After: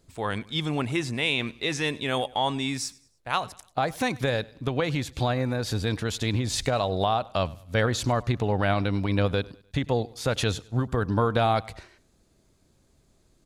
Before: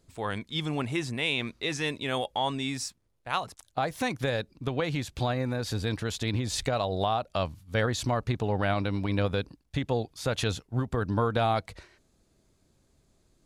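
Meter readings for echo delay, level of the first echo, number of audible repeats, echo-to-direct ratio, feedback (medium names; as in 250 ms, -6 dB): 100 ms, -22.5 dB, 2, -22.0 dB, 39%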